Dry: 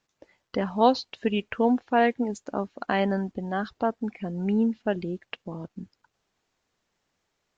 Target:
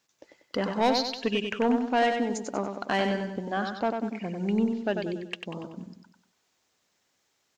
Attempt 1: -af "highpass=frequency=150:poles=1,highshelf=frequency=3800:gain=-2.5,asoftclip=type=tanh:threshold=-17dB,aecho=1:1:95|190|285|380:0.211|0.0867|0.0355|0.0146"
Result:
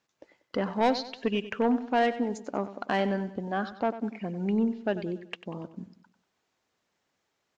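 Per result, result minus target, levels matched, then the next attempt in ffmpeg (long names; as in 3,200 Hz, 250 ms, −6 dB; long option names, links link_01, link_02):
8,000 Hz band −8.0 dB; echo-to-direct −8 dB
-af "highpass=frequency=150:poles=1,highshelf=frequency=3800:gain=9,asoftclip=type=tanh:threshold=-17dB,aecho=1:1:95|190|285|380:0.211|0.0867|0.0355|0.0146"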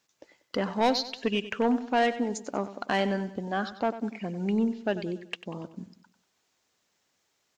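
echo-to-direct −8 dB
-af "highpass=frequency=150:poles=1,highshelf=frequency=3800:gain=9,asoftclip=type=tanh:threshold=-17dB,aecho=1:1:95|190|285|380|475:0.531|0.218|0.0892|0.0366|0.015"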